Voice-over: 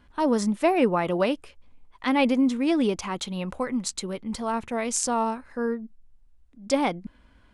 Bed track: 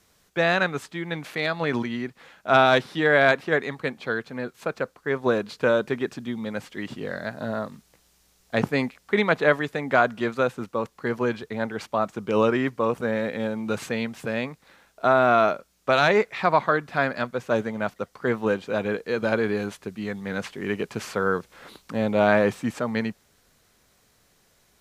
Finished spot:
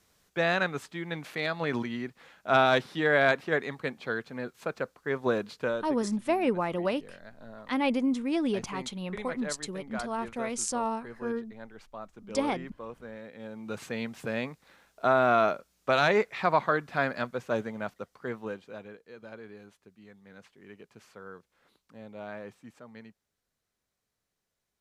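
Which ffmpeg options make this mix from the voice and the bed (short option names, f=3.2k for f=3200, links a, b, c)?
-filter_complex "[0:a]adelay=5650,volume=-5.5dB[a];[1:a]volume=8.5dB,afade=t=out:st=5.43:d=0.52:silence=0.223872,afade=t=in:st=13.34:d=0.89:silence=0.211349,afade=t=out:st=17.18:d=1.79:silence=0.133352[b];[a][b]amix=inputs=2:normalize=0"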